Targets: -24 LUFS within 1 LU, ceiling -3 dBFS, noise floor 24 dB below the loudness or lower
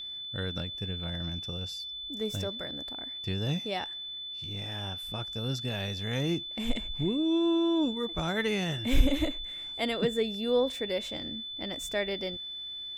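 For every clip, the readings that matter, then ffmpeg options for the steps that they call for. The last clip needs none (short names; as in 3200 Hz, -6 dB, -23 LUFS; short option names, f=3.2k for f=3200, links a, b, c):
steady tone 3500 Hz; tone level -37 dBFS; loudness -31.5 LUFS; peak -10.0 dBFS; loudness target -24.0 LUFS
-> -af "bandreject=f=3.5k:w=30"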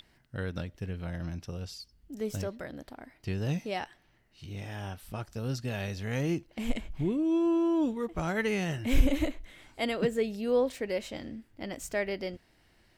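steady tone none; loudness -32.5 LUFS; peak -10.5 dBFS; loudness target -24.0 LUFS
-> -af "volume=8.5dB,alimiter=limit=-3dB:level=0:latency=1"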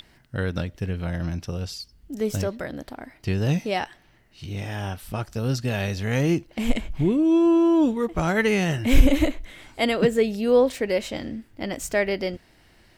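loudness -24.0 LUFS; peak -3.0 dBFS; noise floor -57 dBFS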